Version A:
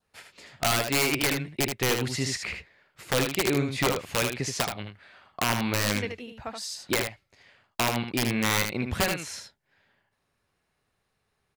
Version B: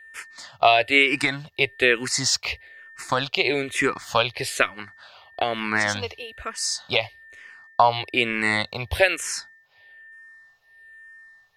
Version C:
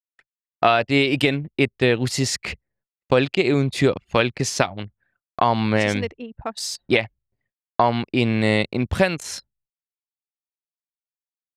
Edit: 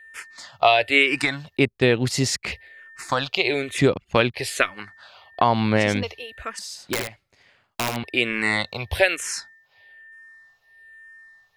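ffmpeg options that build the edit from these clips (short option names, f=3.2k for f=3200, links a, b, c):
-filter_complex "[2:a]asplit=3[a][b][c];[1:a]asplit=5[d][e][f][g][h];[d]atrim=end=1.572[i];[a]atrim=start=1.568:end=2.522[j];[e]atrim=start=2.518:end=3.782[k];[b]atrim=start=3.778:end=4.342[l];[f]atrim=start=4.338:end=5.412[m];[c]atrim=start=5.408:end=6.032[n];[g]atrim=start=6.028:end=6.592[o];[0:a]atrim=start=6.588:end=8.042[p];[h]atrim=start=8.038[q];[i][j]acrossfade=d=0.004:c1=hsin:c2=hsin[r];[r][k]acrossfade=d=0.004:c1=hsin:c2=hsin[s];[s][l]acrossfade=d=0.004:c1=hsin:c2=hsin[t];[t][m]acrossfade=d=0.004:c1=hsin:c2=hsin[u];[u][n]acrossfade=d=0.004:c1=hsin:c2=hsin[v];[v][o]acrossfade=d=0.004:c1=hsin:c2=hsin[w];[w][p]acrossfade=d=0.004:c1=hsin:c2=hsin[x];[x][q]acrossfade=d=0.004:c1=hsin:c2=hsin"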